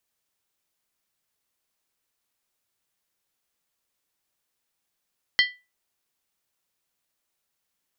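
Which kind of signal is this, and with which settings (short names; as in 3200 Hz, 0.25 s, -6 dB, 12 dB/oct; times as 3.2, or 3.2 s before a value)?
skin hit, lowest mode 1980 Hz, decay 0.27 s, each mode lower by 3.5 dB, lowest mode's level -14 dB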